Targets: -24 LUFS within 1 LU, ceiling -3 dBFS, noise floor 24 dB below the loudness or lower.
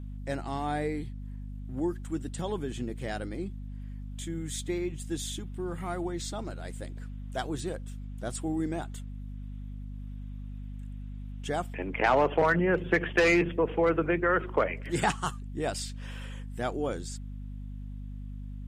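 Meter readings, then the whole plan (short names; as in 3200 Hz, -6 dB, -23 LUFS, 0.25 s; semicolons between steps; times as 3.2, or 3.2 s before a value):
hum 50 Hz; harmonics up to 250 Hz; hum level -37 dBFS; loudness -31.0 LUFS; peak -12.5 dBFS; loudness target -24.0 LUFS
-> notches 50/100/150/200/250 Hz; gain +7 dB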